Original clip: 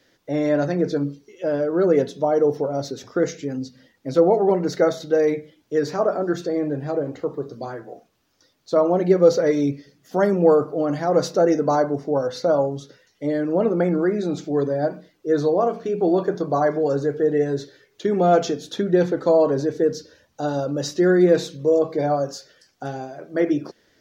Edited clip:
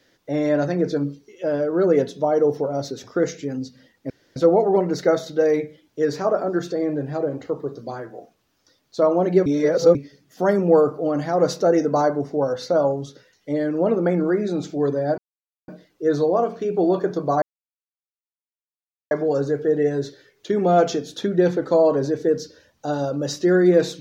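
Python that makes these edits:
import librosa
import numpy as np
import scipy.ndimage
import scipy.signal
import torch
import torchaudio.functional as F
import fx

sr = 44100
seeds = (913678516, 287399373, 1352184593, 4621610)

y = fx.edit(x, sr, fx.insert_room_tone(at_s=4.1, length_s=0.26),
    fx.reverse_span(start_s=9.2, length_s=0.49),
    fx.insert_silence(at_s=14.92, length_s=0.5),
    fx.insert_silence(at_s=16.66, length_s=1.69), tone=tone)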